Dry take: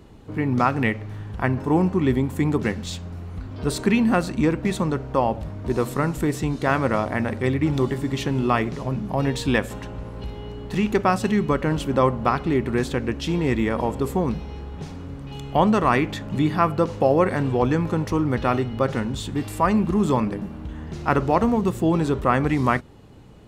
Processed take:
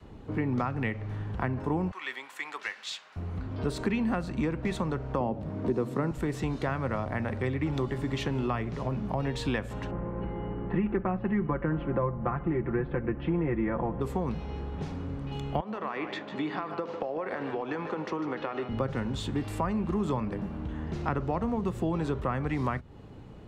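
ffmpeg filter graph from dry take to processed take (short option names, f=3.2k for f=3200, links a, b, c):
-filter_complex "[0:a]asettb=1/sr,asplit=3[a][b][c];[a]atrim=end=1.914[d];[b]atrim=start=1.91:end=3.16,asetpts=PTS-STARTPTS,afade=t=in:d=0.004:c=qsin,afade=t=out:st=1.246:d=0.004:c=qsin,highpass=1.5k,asplit=2[e][f];[f]highpass=f=720:p=1,volume=8dB,asoftclip=type=tanh:threshold=-16dB[g];[e][g]amix=inputs=2:normalize=0,lowpass=f=6.1k:p=1,volume=-6dB[h];[c]atrim=start=3.156[i];[d][h]acrossfade=d=0.004:c1=hsin:c2=qsin[j];[j][i]acrossfade=d=0.004:c1=qsin:c2=hsin,asettb=1/sr,asplit=3[k][l][m];[k]atrim=end=5.204[n];[l]atrim=start=5.2:end=6.11,asetpts=PTS-STARTPTS,afade=t=in:d=0.004:c=qsin,afade=t=out:st=0.906:d=0.004:c=qsin,highpass=120,equalizer=f=320:t=o:w=2:g=8.5[o];[m]atrim=start=6.106[p];[n][o]acrossfade=d=0.004:c1=hsin:c2=qsin[q];[q][p]acrossfade=d=0.004:c1=qsin:c2=hsin,asettb=1/sr,asplit=3[r][s][t];[r]atrim=end=9.914[u];[s]atrim=start=9.91:end=14.01,asetpts=PTS-STARTPTS,afade=t=in:d=0.004:c=qsin,afade=t=out:st=4.096:d=0.004:c=qsin,lowpass=f=2.1k:w=0.5412,lowpass=f=2.1k:w=1.3066,equalizer=f=290:w=1.7:g=4,aecho=1:1:5.8:0.67,atrim=end_sample=180810[v];[t]atrim=start=14.006[w];[u][v]acrossfade=d=0.004:c1=hsin:c2=qsin[x];[x][w]acrossfade=d=0.004:c1=qsin:c2=hsin,asettb=1/sr,asplit=3[y][z][aa];[y]atrim=end=15.604[ab];[z]atrim=start=15.6:end=18.69,asetpts=PTS-STARTPTS,afade=t=in:d=0.004:c=qsin,afade=t=out:st=3.086:d=0.004:c=qsin,highpass=420,lowpass=4.7k,acompressor=threshold=-24dB:ratio=10:attack=3.2:release=140:knee=1:detection=peak,aecho=1:1:149:0.299,atrim=end_sample=136269[ac];[aa]atrim=start=18.686[ad];[ab][ac]acrossfade=d=0.004:c1=hsin:c2=qsin[ae];[ae][ad]acrossfade=d=0.004:c1=qsin:c2=hsin,lowpass=f=2.7k:p=1,adynamicequalizer=threshold=0.0224:dfrequency=290:dqfactor=1:tfrequency=290:tqfactor=1:attack=5:release=100:ratio=0.375:range=2:mode=cutabove:tftype=bell,acrossover=split=83|240[af][ag][ah];[af]acompressor=threshold=-39dB:ratio=4[ai];[ag]acompressor=threshold=-35dB:ratio=4[aj];[ah]acompressor=threshold=-30dB:ratio=4[ak];[ai][aj][ak]amix=inputs=3:normalize=0"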